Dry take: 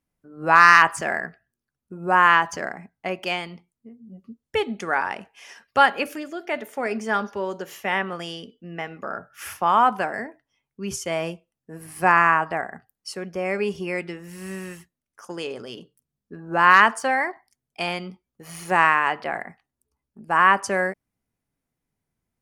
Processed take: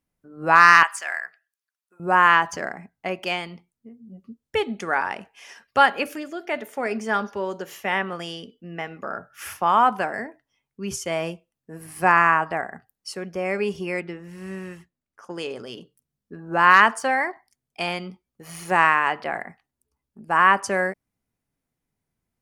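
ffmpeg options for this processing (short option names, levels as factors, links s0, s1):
-filter_complex "[0:a]asettb=1/sr,asplit=3[s0][s1][s2];[s0]atrim=end=0.834[s3];[s1]atrim=start=0.83:end=2,asetpts=PTS-STARTPTS,afade=t=in:d=0.004:c=qsin,afade=t=out:st=1.166:d=0.004:c=qsin,highpass=1300[s4];[s2]atrim=start=1.996[s5];[s3][s4]acrossfade=d=0.004:c1=hsin:c2=qsin[s6];[s6][s5]acrossfade=d=0.004:c1=qsin:c2=hsin,asettb=1/sr,asplit=3[s7][s8][s9];[s7]atrim=end=14.004[s10];[s8]atrim=start=14:end=15.36,asetpts=PTS-STARTPTS,afade=t=in:d=0.004:c=qsin,afade=t=out:st=1.356:d=0.004:c=qsin,lowpass=f=2300:p=1[s11];[s9]atrim=start=15.356[s12];[s10][s11]acrossfade=d=0.004:c1=hsin:c2=qsin[s13];[s13][s12]acrossfade=d=0.004:c1=qsin:c2=hsin"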